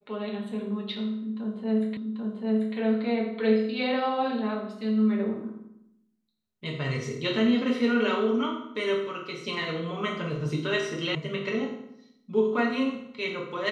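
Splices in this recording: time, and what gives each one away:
1.97 s: repeat of the last 0.79 s
11.15 s: sound stops dead

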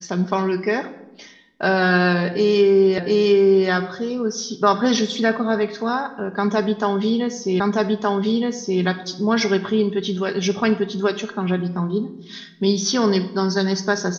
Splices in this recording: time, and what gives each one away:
2.98 s: repeat of the last 0.71 s
7.60 s: repeat of the last 1.22 s

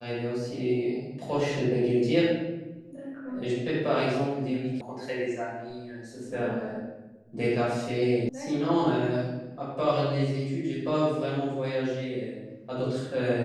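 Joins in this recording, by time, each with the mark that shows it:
4.81 s: sound stops dead
8.29 s: sound stops dead

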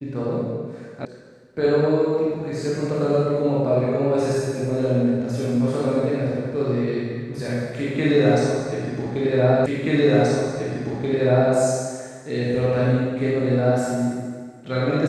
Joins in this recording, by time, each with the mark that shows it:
1.05 s: sound stops dead
9.66 s: repeat of the last 1.88 s

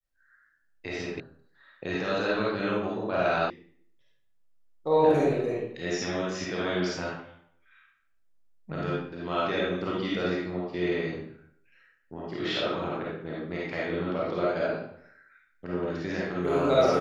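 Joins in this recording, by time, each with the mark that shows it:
1.20 s: sound stops dead
3.50 s: sound stops dead

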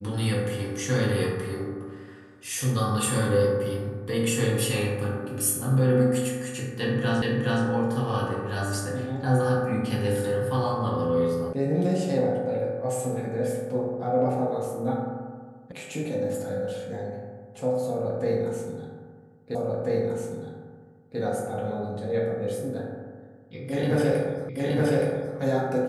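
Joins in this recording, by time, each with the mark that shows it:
7.22 s: repeat of the last 0.42 s
11.53 s: sound stops dead
15.72 s: sound stops dead
19.55 s: repeat of the last 1.64 s
24.49 s: repeat of the last 0.87 s

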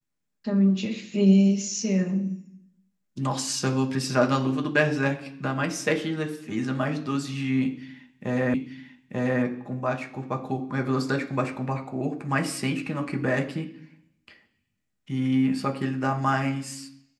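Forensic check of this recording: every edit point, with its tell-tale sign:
8.54 s: repeat of the last 0.89 s

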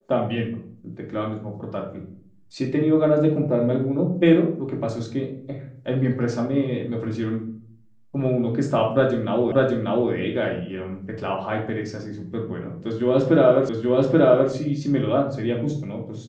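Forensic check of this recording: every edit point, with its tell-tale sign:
9.52 s: repeat of the last 0.59 s
13.69 s: repeat of the last 0.83 s

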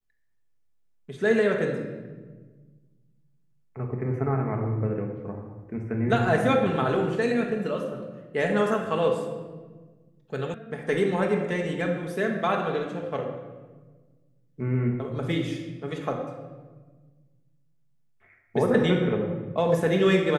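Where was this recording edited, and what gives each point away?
10.54 s: sound stops dead

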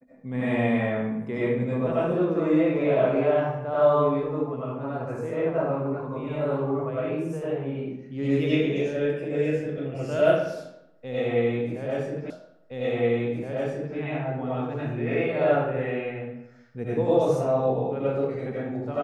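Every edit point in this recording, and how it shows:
12.30 s: repeat of the last 1.67 s

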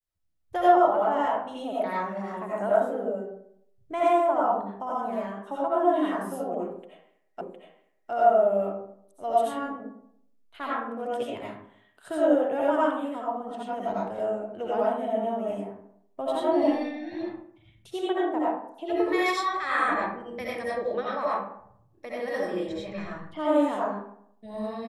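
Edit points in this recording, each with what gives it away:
7.41 s: repeat of the last 0.71 s

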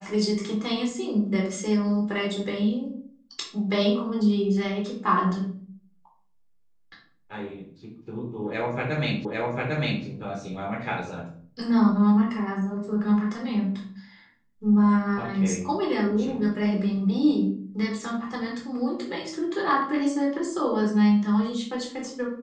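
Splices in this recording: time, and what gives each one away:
9.25 s: repeat of the last 0.8 s

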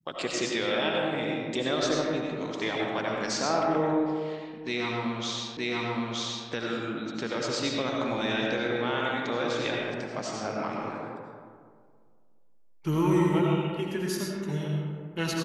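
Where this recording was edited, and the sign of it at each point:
5.57 s: repeat of the last 0.92 s

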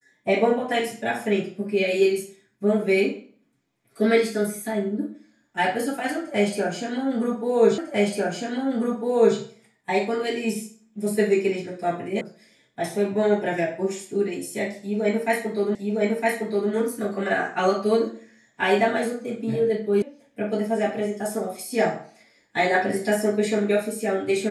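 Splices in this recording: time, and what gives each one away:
7.78 s: repeat of the last 1.6 s
12.21 s: sound stops dead
15.75 s: repeat of the last 0.96 s
20.02 s: sound stops dead

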